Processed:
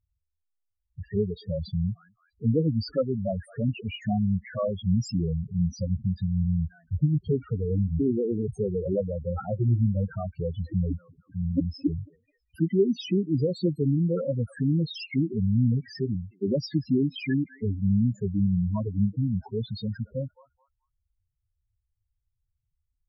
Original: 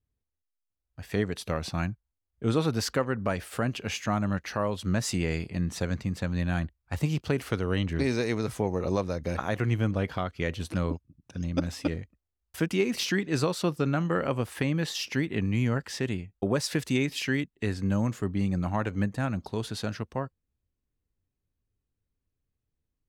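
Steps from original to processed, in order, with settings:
feedback echo with a high-pass in the loop 216 ms, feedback 35%, high-pass 860 Hz, level −19 dB
spectral peaks only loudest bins 4
level +5 dB

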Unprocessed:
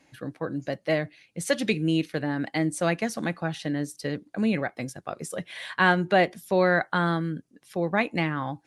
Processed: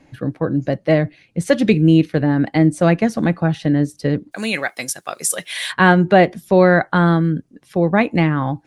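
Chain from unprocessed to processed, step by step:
spectral tilt −2.5 dB per octave, from 0:04.31 +4 dB per octave, from 0:05.71 −2 dB per octave
level +7.5 dB

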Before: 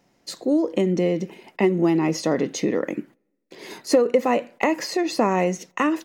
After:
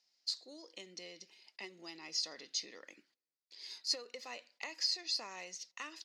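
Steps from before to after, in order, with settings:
resonant band-pass 4,700 Hz, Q 4.6
level +1.5 dB

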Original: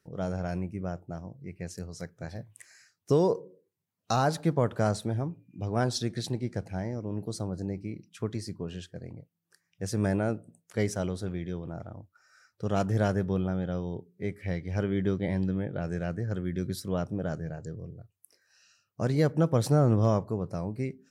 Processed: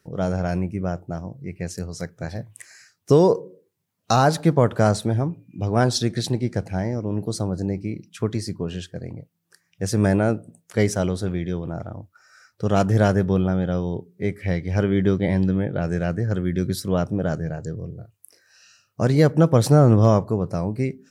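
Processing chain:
0:17.94–0:19.03: double-tracking delay 38 ms −6.5 dB
level +8.5 dB

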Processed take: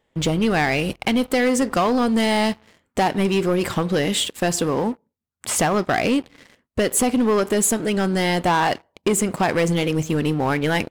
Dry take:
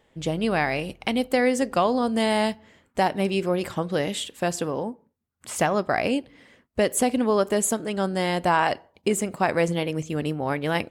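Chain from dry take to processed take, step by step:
dynamic equaliser 590 Hz, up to −5 dB, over −37 dBFS, Q 3.8
downward compressor 1.5 to 1, threshold −31 dBFS, peak gain reduction 5.5 dB
leveller curve on the samples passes 3

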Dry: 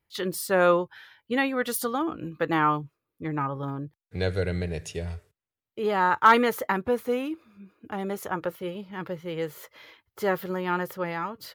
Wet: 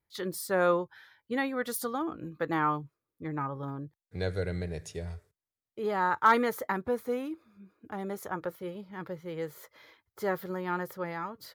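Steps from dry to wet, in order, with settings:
parametric band 2,800 Hz −8.5 dB 0.36 octaves
level −5 dB

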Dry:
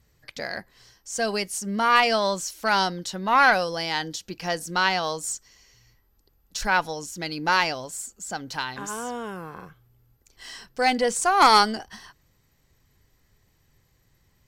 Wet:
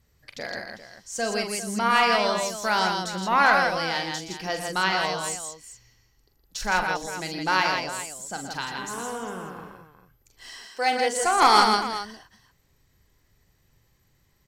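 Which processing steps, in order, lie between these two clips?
0:10.49–0:11.17: high-pass filter 370 Hz 12 dB per octave
on a send: multi-tap delay 43/119/163/400 ms −8.5/−10.5/−4.5/−12.5 dB
on the sum: level −2.5 dB

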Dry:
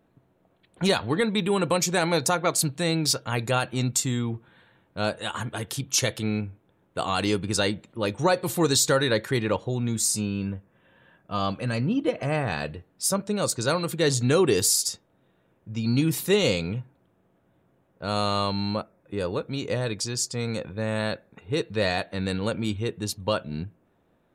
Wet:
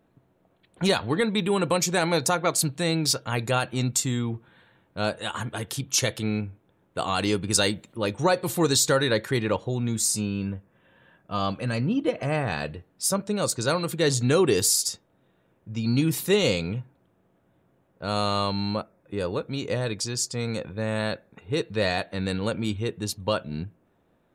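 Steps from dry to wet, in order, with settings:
0:07.50–0:07.98: high-shelf EQ 5,100 Hz +9.5 dB

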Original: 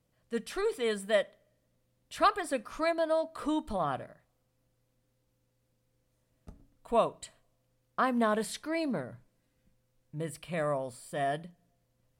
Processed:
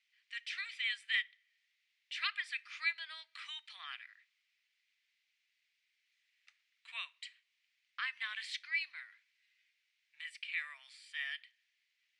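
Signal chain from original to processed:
elliptic high-pass filter 2,100 Hz, stop band 80 dB
in parallel at +2 dB: downward compressor, threshold −58 dBFS, peak gain reduction 22 dB
on the sum: head-to-tape spacing loss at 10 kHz 38 dB
level +14.5 dB

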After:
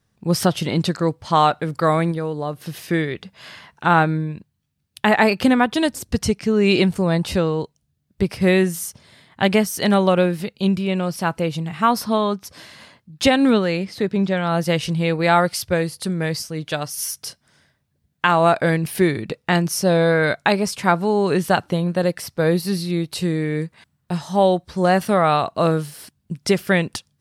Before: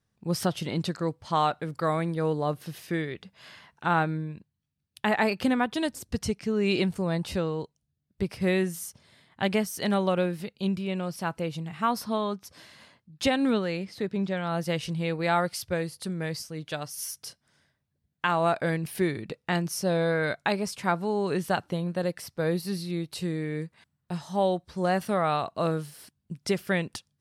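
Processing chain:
0:02.11–0:02.83: downward compressor 3 to 1, threshold −33 dBFS, peak gain reduction 8.5 dB
level +9 dB

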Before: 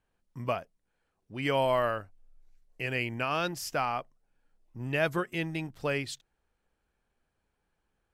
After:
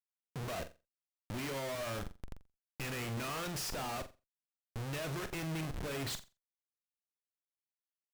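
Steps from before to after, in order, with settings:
downward compressor 3 to 1, threshold −35 dBFS, peak gain reduction 10 dB
comparator with hysteresis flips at −50.5 dBFS
on a send: flutter between parallel walls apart 7.5 metres, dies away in 0.26 s
on the sum: level +2 dB

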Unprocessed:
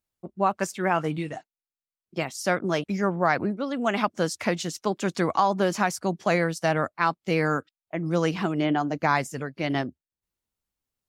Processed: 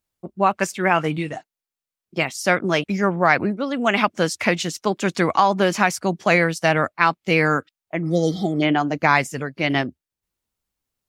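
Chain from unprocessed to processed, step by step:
dynamic equaliser 2,400 Hz, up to +7 dB, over −42 dBFS, Q 1.4
healed spectral selection 0:08.08–0:08.60, 830–3,100 Hz before
level +4.5 dB

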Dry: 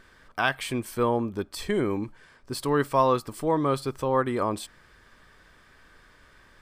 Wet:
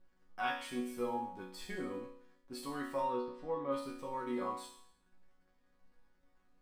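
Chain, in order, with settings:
slack as between gear wheels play −46.5 dBFS
0:03.00–0:03.72: high-frequency loss of the air 230 metres
resonators tuned to a chord F#3 sus4, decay 0.66 s
level +8.5 dB

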